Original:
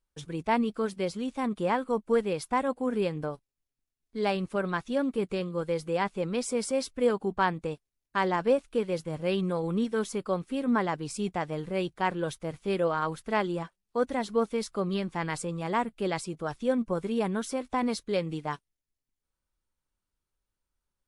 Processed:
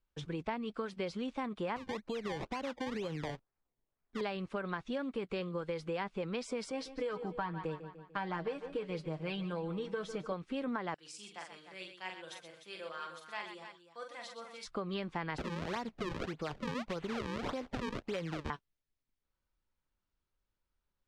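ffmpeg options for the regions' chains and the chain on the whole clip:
-filter_complex "[0:a]asettb=1/sr,asplit=3[s0][s1][s2];[s0]atrim=end=1.764[s3];[s1]atrim=start=1.76:end=4.21,asetpts=PTS-STARTPTS,afade=t=in:d=0.004:c=qsin,afade=t=out:st=2.446:d=0.004:c=qsin,acompressor=threshold=0.0282:ratio=10:attack=3.2:release=140:knee=1:detection=peak,acrusher=samples=23:mix=1:aa=0.000001:lfo=1:lforange=23:lforate=2.1[s4];[s2]atrim=start=4.206[s5];[s3][s4]acrossfade=d=0.004:c1=hsin:c2=qsin[s6];[s6][s5]acrossfade=d=0.004:c1=qsin:c2=hsin,asettb=1/sr,asplit=3[s7][s8][s9];[s7]atrim=end=6.704[s10];[s8]atrim=start=6.7:end=10.32,asetpts=PTS-STARTPTS,afade=t=in:d=0.004:c=qsin,afade=t=out:st=3.616:d=0.004:c=qsin,aecho=1:1:6.4:0.65,atrim=end_sample=159642,flanger=delay=6.1:depth=1.1:regen=76:speed=1.2:shape=triangular,aecho=1:1:148|296|444|592:0.158|0.0777|0.0381|0.0186,atrim=end_sample=159642[s11];[s9]atrim=start=10.316[s12];[s10][s11]acrossfade=d=0.004:c1=hsin:c2=qsin[s13];[s13][s12]acrossfade=d=0.004:c1=qsin:c2=hsin,asettb=1/sr,asplit=3[s14][s15][s16];[s14]atrim=end=10.944[s17];[s15]atrim=start=10.94:end=14.65,asetpts=PTS-STARTPTS,afade=t=in:d=0.004:c=qsin,afade=t=out:st=3.706:d=0.004:c=qsin,aderivative,aecho=1:1:5.8:0.48,atrim=end_sample=163611,aecho=1:1:43|124|301:0.562|0.355|0.316,atrim=end_sample=163611[s18];[s16]atrim=start=14.646[s19];[s17][s18]acrossfade=d=0.004:c1=hsin:c2=qsin[s20];[s20][s19]acrossfade=d=0.004:c1=qsin:c2=hsin,asettb=1/sr,asplit=3[s21][s22][s23];[s21]atrim=end=15.384[s24];[s22]atrim=start=15.38:end=18.5,asetpts=PTS-STARTPTS,afade=t=in:d=0.004:c=qsin,afade=t=out:st=3.116:d=0.004:c=qsin,aemphasis=mode=production:type=50fm,acompressor=threshold=0.0316:ratio=3:attack=3.2:release=140:knee=1:detection=peak,acrusher=samples=36:mix=1:aa=0.000001:lfo=1:lforange=57.6:lforate=1.7[s25];[s23]atrim=start=18.496[s26];[s24][s25]acrossfade=d=0.004:c1=hsin:c2=qsin[s27];[s27][s26]acrossfade=d=0.004:c1=qsin:c2=hsin,acrossover=split=470|1000[s28][s29][s30];[s28]acompressor=threshold=0.0141:ratio=4[s31];[s29]acompressor=threshold=0.0126:ratio=4[s32];[s30]acompressor=threshold=0.02:ratio=4[s33];[s31][s32][s33]amix=inputs=3:normalize=0,lowpass=4200,acompressor=threshold=0.0224:ratio=6"

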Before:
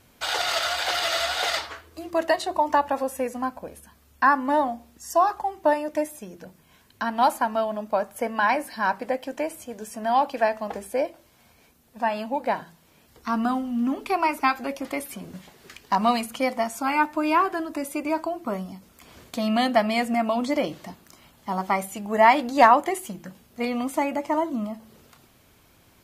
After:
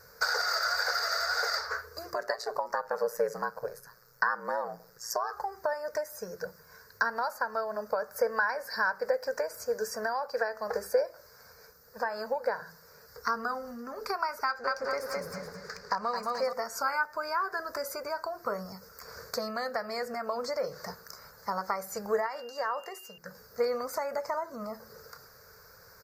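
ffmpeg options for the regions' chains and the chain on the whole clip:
-filter_complex "[0:a]asettb=1/sr,asplit=3[s0][s1][s2];[s0]atrim=end=2.154[s3];[s1]atrim=start=2.15:end=5.33,asetpts=PTS-STARTPTS,afade=t=in:d=0.004:c=qsin,afade=t=out:st=3.176:d=0.004:c=qsin,highpass=80,aeval=exprs='val(0)*sin(2*PI*58*n/s)':c=same[s4];[s2]atrim=start=5.326[s5];[s3][s4]acrossfade=d=0.004:c1=hsin:c2=qsin[s6];[s6][s5]acrossfade=d=0.004:c1=qsin:c2=hsin,asettb=1/sr,asplit=3[s7][s8][s9];[s7]atrim=end=14.464[s10];[s8]atrim=start=14.46:end=16.53,asetpts=PTS-STARTPTS,afade=t=in:d=0.004:c=qsin,afade=t=out:st=2.066:d=0.004:c=qsin,adynamicsmooth=sensitivity=7.5:basefreq=7200,aecho=1:1:213|426|639|852:0.631|0.196|0.0606|0.0188,atrim=end_sample=91287[s11];[s9]atrim=start=16.526[s12];[s10][s11]acrossfade=d=0.004:c1=hsin:c2=qsin[s13];[s13][s12]acrossfade=d=0.004:c1=qsin:c2=hsin,asettb=1/sr,asplit=3[s14][s15][s16];[s14]atrim=end=22.264[s17];[s15]atrim=start=22.26:end=23.18,asetpts=PTS-STARTPTS,afade=t=in:d=0.004:c=qsin,afade=t=out:st=0.916:d=0.004:c=qsin,aeval=exprs='val(0)+0.112*sin(2*PI*2800*n/s)':c=same,acompressor=threshold=0.141:ratio=3:attack=3.2:release=140:knee=1:detection=peak,highpass=190[s18];[s16]atrim=start=23.176[s19];[s17][s18]acrossfade=d=0.004:c1=hsin:c2=qsin[s20];[s20][s19]acrossfade=d=0.004:c1=qsin:c2=hsin,equalizer=f=3600:w=1.2:g=5,acompressor=threshold=0.0355:ratio=12,firequalizer=gain_entry='entry(160,0);entry(310,-17);entry(450,14);entry(700,0);entry(1500,14);entry(3100,-28);entry(4700,11);entry(9700,-5);entry(15000,14)':delay=0.05:min_phase=1,volume=0.708"

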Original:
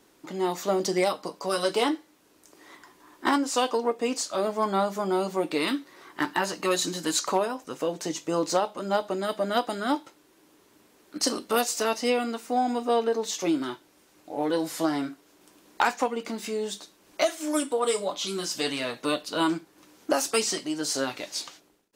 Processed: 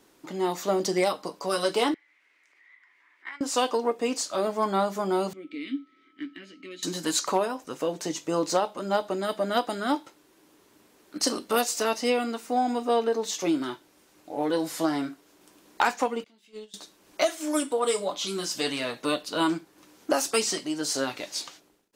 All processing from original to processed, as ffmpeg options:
-filter_complex "[0:a]asettb=1/sr,asplit=3[s0][s1][s2];[s0]atrim=end=1.944[s3];[s1]atrim=start=1.94:end=3.41,asetpts=PTS-STARTPTS,afade=t=in:d=0.004:c=qsin,afade=t=out:st=1.466:d=0.004:c=qsin,bandpass=f=2100:t=q:w=8.4,acompressor=mode=upward:threshold=0.00282:ratio=2.5:attack=3.2:release=140:knee=2.83:detection=peak[s4];[s2]atrim=start=3.406[s5];[s3][s4]acrossfade=d=0.004:c1=hsin:c2=qsin[s6];[s6][s5]acrossfade=d=0.004:c1=qsin:c2=hsin,asettb=1/sr,asplit=3[s7][s8][s9];[s7]atrim=end=5.334[s10];[s8]atrim=start=5.33:end=6.83,asetpts=PTS-STARTPTS,afade=t=in:d=0.004:c=qsin,afade=t=out:st=1.496:d=0.004:c=qsin,aeval=exprs='val(0)+0.0141*sin(2*PI*1300*n/s)':c=same,asplit=3[s11][s12][s13];[s11]bandpass=f=270:t=q:w=8,volume=1[s14];[s12]bandpass=f=2290:t=q:w=8,volume=0.501[s15];[s13]bandpass=f=3010:t=q:w=8,volume=0.355[s16];[s14][s15][s16]amix=inputs=3:normalize=0[s17];[s9]atrim=start=6.826[s18];[s10][s17]acrossfade=d=0.004:c1=hsin:c2=qsin[s19];[s19][s18]acrossfade=d=0.004:c1=qsin:c2=hsin,asettb=1/sr,asplit=3[s20][s21][s22];[s20]atrim=end=16.244[s23];[s21]atrim=start=16.24:end=16.74,asetpts=PTS-STARTPTS,afade=t=in:d=0.004:c=qsin,afade=t=out:st=0.496:d=0.004:c=qsin,agate=range=0.0355:threshold=0.0447:ratio=16:release=100:detection=peak,equalizer=f=3200:w=1.6:g=12,asplit=2[s24][s25];[s25]adelay=19,volume=0.224[s26];[s24][s26]amix=inputs=2:normalize=0,atrim=end_sample=22050[s27];[s22]atrim=start=16.736[s28];[s23][s27]acrossfade=d=0.004:c1=hsin:c2=qsin[s29];[s29][s28]acrossfade=d=0.004:c1=qsin:c2=hsin"

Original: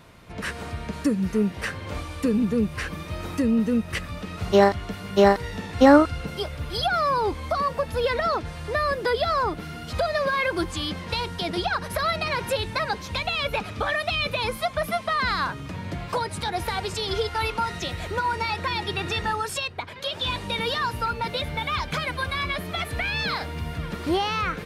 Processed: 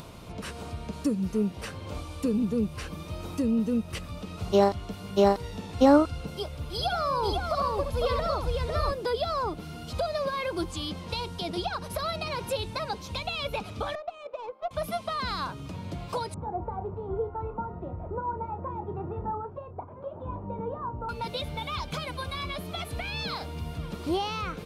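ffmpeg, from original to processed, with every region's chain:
-filter_complex "[0:a]asettb=1/sr,asplit=3[s0][s1][s2];[s0]atrim=end=6.724[s3];[s1]atrim=start=6.72:end=8.91,asetpts=PTS-STARTPTS,afade=t=in:d=0.004:c=qsin,afade=t=out:st=2.186:d=0.004:c=qsin,asubboost=boost=6:cutoff=120,aecho=1:1:69|504:0.473|0.668,atrim=end_sample=96579[s4];[s2]atrim=start=8.906[s5];[s3][s4]acrossfade=d=0.004:c1=hsin:c2=qsin[s6];[s6][s5]acrossfade=d=0.004:c1=qsin:c2=hsin,asettb=1/sr,asplit=3[s7][s8][s9];[s7]atrim=end=13.954[s10];[s8]atrim=start=13.95:end=14.71,asetpts=PTS-STARTPTS,afade=t=in:d=0.004:c=qsin,afade=t=out:st=0.756:d=0.004:c=qsin,highpass=f=490:w=0.5412,highpass=f=490:w=1.3066,aemphasis=mode=reproduction:type=50kf,adynamicsmooth=sensitivity=0.5:basefreq=710[s11];[s9]atrim=start=14.706[s12];[s10][s11]acrossfade=d=0.004:c1=hsin:c2=qsin[s13];[s13][s12]acrossfade=d=0.004:c1=qsin:c2=hsin,asettb=1/sr,asplit=3[s14][s15][s16];[s14]atrim=end=16.344[s17];[s15]atrim=start=16.34:end=21.09,asetpts=PTS-STARTPTS,afade=t=in:d=0.004:c=qsin,afade=t=out:st=4.746:d=0.004:c=qsin,lowpass=f=1100:w=0.5412,lowpass=f=1100:w=1.3066,asplit=2[s18][s19];[s19]adelay=31,volume=0.299[s20];[s18][s20]amix=inputs=2:normalize=0,atrim=end_sample=209475[s21];[s16]atrim=start=21.086[s22];[s17][s21]acrossfade=d=0.004:c1=hsin:c2=qsin[s23];[s23][s22]acrossfade=d=0.004:c1=qsin:c2=hsin,equalizer=f=1800:t=o:w=0.64:g=-11.5,acompressor=mode=upward:threshold=0.0282:ratio=2.5,volume=0.631"

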